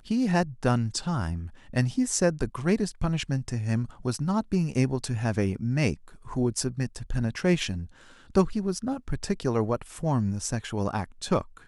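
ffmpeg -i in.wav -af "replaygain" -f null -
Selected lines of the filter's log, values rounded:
track_gain = +7.9 dB
track_peak = 0.274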